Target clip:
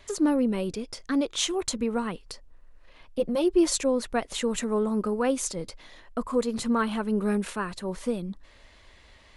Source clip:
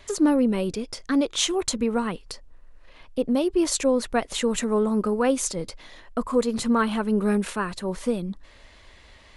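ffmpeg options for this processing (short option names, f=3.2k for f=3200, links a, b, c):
-filter_complex "[0:a]asettb=1/sr,asplit=3[a][b][c];[a]atrim=end=3.194[d];[b]atrim=start=3.19:end=3.78,asetpts=PTS-STARTPTS,afade=t=in:d=0.004:c=qsin,afade=t=out:st=0.586:d=0.004:c=qsin,aecho=1:1:5.7:0.75,atrim=end_sample=26019[e];[c]atrim=start=3.776[f];[d][e]acrossfade=d=0.004:c1=hsin:c2=qsin[g];[g][f]acrossfade=d=0.004:c1=qsin:c2=hsin,volume=-3.5dB"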